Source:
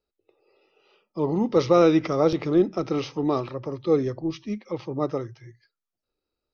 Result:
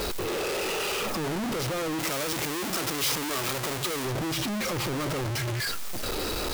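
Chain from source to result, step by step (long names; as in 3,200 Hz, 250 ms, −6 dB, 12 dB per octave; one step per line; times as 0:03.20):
sign of each sample alone
0:01.99–0:04.05: spectral tilt +2 dB per octave
level −4 dB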